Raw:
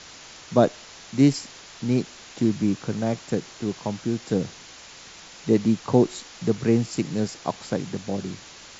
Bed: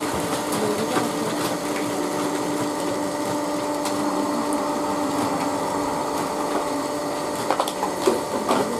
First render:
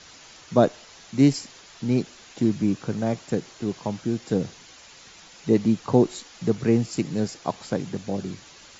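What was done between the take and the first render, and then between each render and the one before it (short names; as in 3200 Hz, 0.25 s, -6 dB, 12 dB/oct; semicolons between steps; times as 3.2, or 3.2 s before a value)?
denoiser 6 dB, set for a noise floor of -45 dBFS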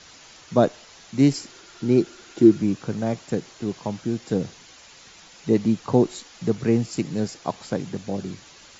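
1.3–2.59 small resonant body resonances 350/1400 Hz, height 10 dB -> 14 dB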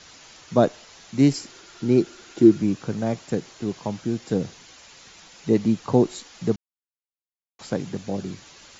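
6.56–7.59 mute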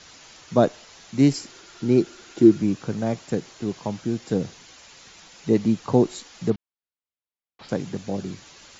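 6.5–7.69 LPF 4200 Hz 24 dB/oct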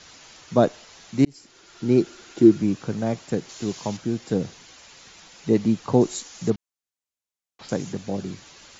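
1.25–1.91 fade in; 3.49–3.97 high shelf 3600 Hz +11.5 dB; 6.01–7.93 bell 6700 Hz +8 dB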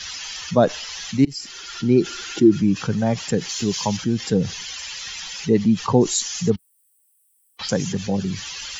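per-bin expansion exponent 1.5; fast leveller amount 50%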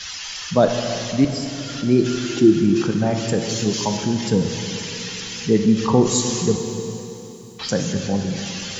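plate-style reverb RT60 3.5 s, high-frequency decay 0.9×, DRR 3.5 dB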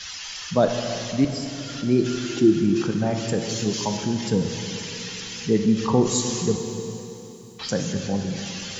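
gain -3.5 dB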